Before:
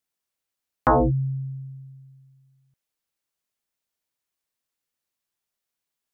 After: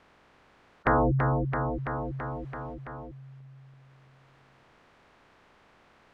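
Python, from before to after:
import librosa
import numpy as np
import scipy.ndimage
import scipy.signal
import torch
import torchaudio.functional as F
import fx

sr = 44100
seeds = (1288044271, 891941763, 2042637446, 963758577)

p1 = fx.spec_clip(x, sr, under_db=25)
p2 = scipy.signal.sosfilt(scipy.signal.butter(2, 1600.0, 'lowpass', fs=sr, output='sos'), p1)
p3 = p2 + fx.echo_feedback(p2, sr, ms=333, feedback_pct=52, wet_db=-8.5, dry=0)
p4 = fx.env_flatten(p3, sr, amount_pct=50)
y = p4 * librosa.db_to_amplitude(-4.0)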